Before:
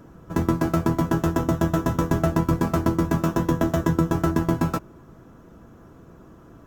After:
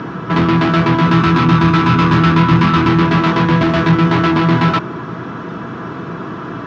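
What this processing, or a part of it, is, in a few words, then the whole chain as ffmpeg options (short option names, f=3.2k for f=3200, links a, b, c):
overdrive pedal into a guitar cabinet: -filter_complex "[0:a]asettb=1/sr,asplit=3[a][b][c];[a]atrim=end=1.074[d];[b]atrim=start=1.07:end=3.02,asetpts=PTS-STARTPTS,afade=t=in:d=0.004:c=qsin,afade=t=out:st=1.946:d=0.004:c=qsin,aecho=1:1:0.8:0.77,atrim=end_sample=85995[e];[c]atrim=start=3.016[f];[d][e]acrossfade=d=0.004:c1=hsin:c2=qsin[g];[g][f]acrossfade=d=0.004:c1=qsin:c2=hsin,asplit=2[h][i];[i]highpass=f=720:p=1,volume=35dB,asoftclip=type=tanh:threshold=-7.5dB[j];[h][j]amix=inputs=2:normalize=0,lowpass=f=4.1k:p=1,volume=-6dB,highpass=83,equalizer=f=120:t=q:w=4:g=7,equalizer=f=170:t=q:w=4:g=6,equalizer=f=550:t=q:w=4:g=-9,equalizer=f=780:t=q:w=4:g=-4,lowpass=f=4.5k:w=0.5412,lowpass=f=4.5k:w=1.3066,volume=1.5dB"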